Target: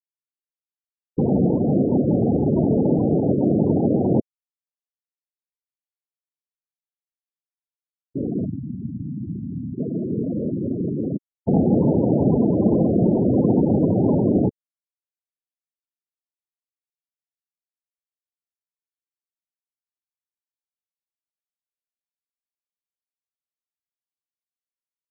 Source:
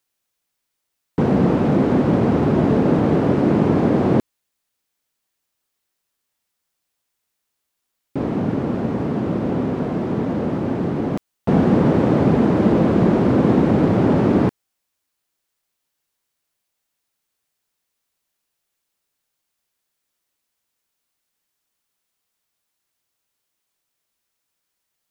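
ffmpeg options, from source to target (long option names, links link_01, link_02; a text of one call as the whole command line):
ffmpeg -i in.wav -filter_complex "[0:a]aexciter=amount=4.5:drive=7.6:freq=2900,asettb=1/sr,asplit=3[link_01][link_02][link_03];[link_01]atrim=end=8.454[link_04];[link_02]atrim=start=8.45:end=9.78,asetpts=PTS-STARTPTS,afade=type=in:duration=0.004:curve=qsin,afade=type=out:start_time=1.326:duration=0.004:curve=qsin,acrossover=split=190[link_05][link_06];[link_06]acompressor=threshold=-30dB:ratio=10[link_07];[link_05][link_07]amix=inputs=2:normalize=0[link_08];[link_03]atrim=start=9.776[link_09];[link_04][link_08]acrossfade=duration=0.004:curve1=hsin:curve2=qsin[link_10];[link_10][link_09]acrossfade=duration=0.004:curve1=qsin:curve2=hsin,afftfilt=real='re*gte(hypot(re,im),0.224)':imag='im*gte(hypot(re,im),0.224)':win_size=1024:overlap=0.75,volume=-2dB" out.wav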